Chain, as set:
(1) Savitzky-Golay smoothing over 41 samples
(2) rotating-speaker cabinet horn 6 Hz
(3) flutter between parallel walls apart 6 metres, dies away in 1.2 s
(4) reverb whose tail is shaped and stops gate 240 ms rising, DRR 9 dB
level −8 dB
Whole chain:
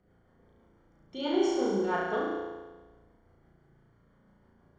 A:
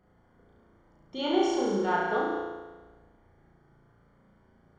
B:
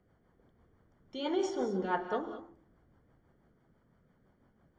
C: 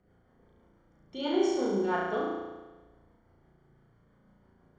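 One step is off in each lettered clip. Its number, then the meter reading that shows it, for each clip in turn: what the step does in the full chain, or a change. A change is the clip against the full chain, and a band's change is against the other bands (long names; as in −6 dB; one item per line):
2, 1 kHz band +3.0 dB
3, echo-to-direct ratio 4.0 dB to −9.0 dB
4, change in momentary loudness spread +2 LU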